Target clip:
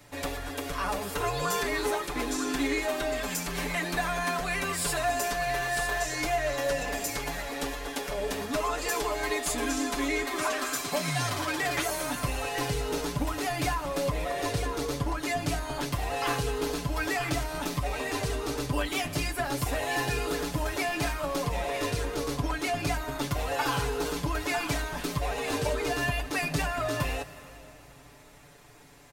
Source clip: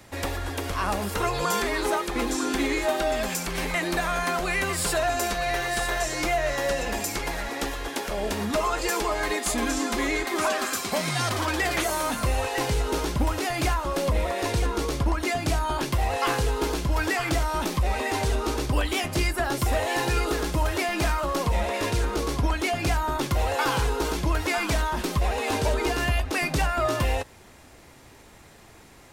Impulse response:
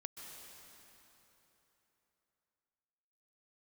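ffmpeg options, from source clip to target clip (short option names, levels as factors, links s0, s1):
-filter_complex "[0:a]equalizer=f=320:w=7.9:g=-2.5,aecho=1:1:6.9:0.87,asplit=2[s0][s1];[1:a]atrim=start_sample=2205,highshelf=f=11000:g=9[s2];[s1][s2]afir=irnorm=-1:irlink=0,volume=0.501[s3];[s0][s3]amix=inputs=2:normalize=0,volume=0.398"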